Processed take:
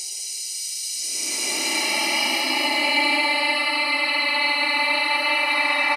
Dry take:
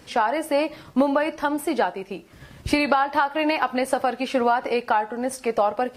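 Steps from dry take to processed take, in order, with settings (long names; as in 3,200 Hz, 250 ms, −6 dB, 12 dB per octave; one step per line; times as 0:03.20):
peak hold with a rise ahead of every peak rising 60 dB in 0.57 s
high-pass filter 300 Hz 6 dB per octave
parametric band 420 Hz −14 dB 1.5 octaves
comb filter 1 ms, depth 95%
auto-filter high-pass square 1.3 Hz 510–6,500 Hz
echo through a band-pass that steps 210 ms, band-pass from 3,500 Hz, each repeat −1.4 octaves, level −8 dB
extreme stretch with random phases 30×, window 0.05 s, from 0:02.64
level +1 dB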